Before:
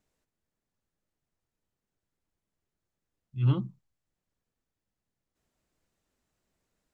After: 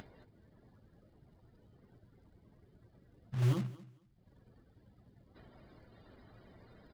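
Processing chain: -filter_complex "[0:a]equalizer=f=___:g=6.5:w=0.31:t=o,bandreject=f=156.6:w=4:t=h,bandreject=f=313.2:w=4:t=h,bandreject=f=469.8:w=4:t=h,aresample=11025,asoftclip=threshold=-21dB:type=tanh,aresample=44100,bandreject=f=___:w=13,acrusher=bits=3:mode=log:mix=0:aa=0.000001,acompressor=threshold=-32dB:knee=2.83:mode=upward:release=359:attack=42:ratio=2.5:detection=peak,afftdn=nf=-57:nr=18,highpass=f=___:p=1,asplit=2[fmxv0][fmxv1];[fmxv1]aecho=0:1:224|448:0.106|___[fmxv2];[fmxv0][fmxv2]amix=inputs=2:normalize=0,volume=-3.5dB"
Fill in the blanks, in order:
110, 2.6k, 43, 0.0191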